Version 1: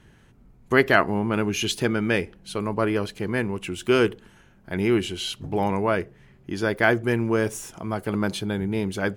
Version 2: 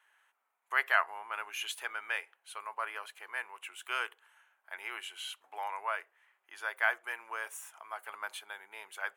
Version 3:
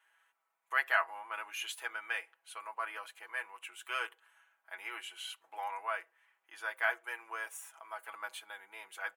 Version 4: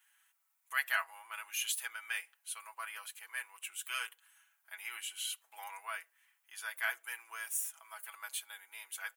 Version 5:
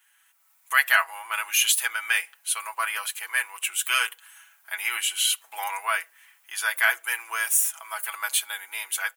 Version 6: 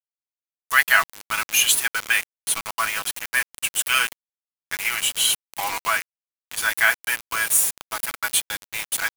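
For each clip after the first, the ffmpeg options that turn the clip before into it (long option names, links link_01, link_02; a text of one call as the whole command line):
ffmpeg -i in.wav -af "highpass=frequency=880:width=0.5412,highpass=frequency=880:width=1.3066,equalizer=frequency=5000:width_type=o:width=0.95:gain=-13.5,volume=-5.5dB" out.wav
ffmpeg -i in.wav -af "aecho=1:1:6.1:0.69,volume=-3.5dB" out.wav
ffmpeg -i in.wav -af "aderivative,volume=9.5dB" out.wav
ffmpeg -i in.wav -filter_complex "[0:a]dynaudnorm=framelen=250:gausssize=3:maxgain=9dB,asplit=2[link_01][link_02];[link_02]alimiter=limit=-17.5dB:level=0:latency=1:release=424,volume=-1dB[link_03];[link_01][link_03]amix=inputs=2:normalize=0,volume=1.5dB" out.wav
ffmpeg -i in.wav -af "acrusher=bits=4:mix=0:aa=0.000001,volume=3dB" out.wav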